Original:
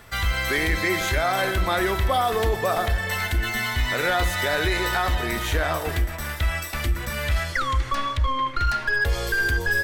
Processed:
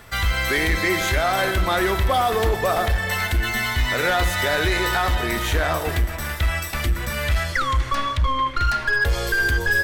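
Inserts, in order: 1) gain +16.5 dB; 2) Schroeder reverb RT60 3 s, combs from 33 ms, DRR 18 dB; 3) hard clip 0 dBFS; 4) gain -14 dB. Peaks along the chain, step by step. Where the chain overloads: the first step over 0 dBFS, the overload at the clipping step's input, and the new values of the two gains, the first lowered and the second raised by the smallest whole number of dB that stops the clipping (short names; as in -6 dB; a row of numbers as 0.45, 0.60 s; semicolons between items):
+3.5, +4.0, 0.0, -14.0 dBFS; step 1, 4.0 dB; step 1 +12.5 dB, step 4 -10 dB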